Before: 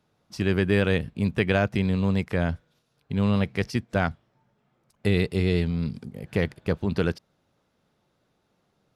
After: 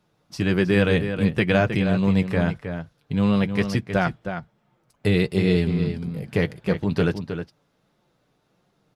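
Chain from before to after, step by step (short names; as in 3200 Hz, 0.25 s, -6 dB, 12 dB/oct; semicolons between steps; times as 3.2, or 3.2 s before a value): flange 1.5 Hz, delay 5.4 ms, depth 1.8 ms, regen -36%; outdoor echo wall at 54 m, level -8 dB; gain +6.5 dB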